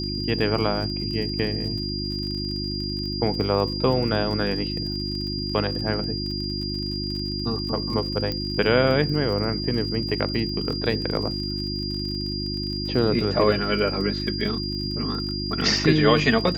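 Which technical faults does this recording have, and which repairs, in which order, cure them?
crackle 44/s -32 dBFS
hum 50 Hz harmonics 7 -30 dBFS
tone 4800 Hz -30 dBFS
8.32 pop -15 dBFS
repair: de-click; de-hum 50 Hz, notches 7; notch 4800 Hz, Q 30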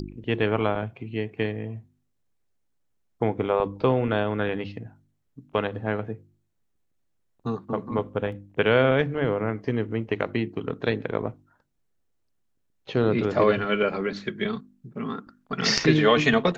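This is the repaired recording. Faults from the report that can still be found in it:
8.32 pop

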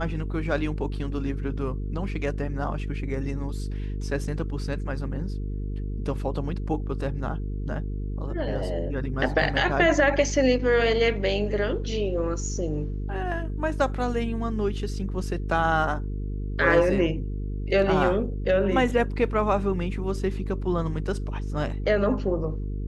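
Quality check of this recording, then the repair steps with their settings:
buzz 50 Hz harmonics 9 -30 dBFS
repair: de-hum 50 Hz, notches 9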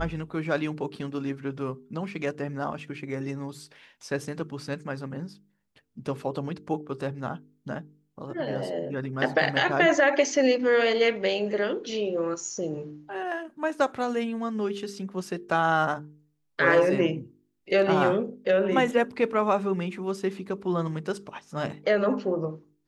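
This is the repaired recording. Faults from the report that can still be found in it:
none

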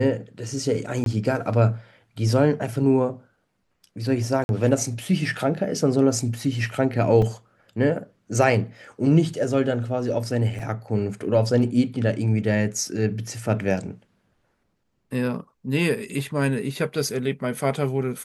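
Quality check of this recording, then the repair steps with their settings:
1.04–1.06 gap 22 ms
4.44–4.49 gap 51 ms
7.22 gap 3.5 ms
10.59–10.6 gap 5.2 ms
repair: interpolate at 1.04, 22 ms; interpolate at 4.44, 51 ms; interpolate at 7.22, 3.5 ms; interpolate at 10.59, 5.2 ms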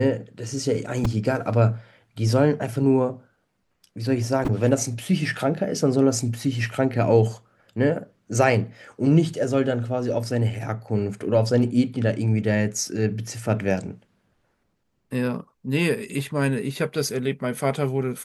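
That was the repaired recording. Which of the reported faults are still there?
none

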